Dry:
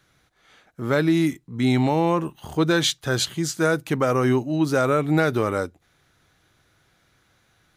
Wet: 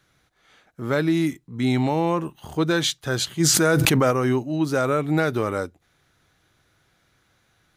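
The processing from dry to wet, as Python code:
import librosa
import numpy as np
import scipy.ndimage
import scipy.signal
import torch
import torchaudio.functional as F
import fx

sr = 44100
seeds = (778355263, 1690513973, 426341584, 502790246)

y = fx.env_flatten(x, sr, amount_pct=100, at=(3.39, 4.1), fade=0.02)
y = y * librosa.db_to_amplitude(-1.5)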